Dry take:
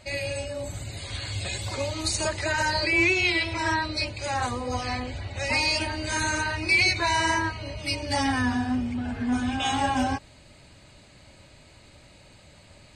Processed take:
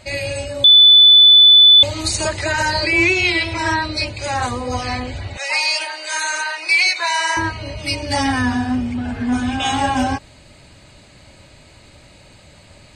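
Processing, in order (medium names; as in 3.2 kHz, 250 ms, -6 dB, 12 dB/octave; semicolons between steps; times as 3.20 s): 0.64–1.83 s: bleep 3.49 kHz -11 dBFS; 5.37–7.37 s: Bessel high-pass 800 Hz, order 4; trim +6.5 dB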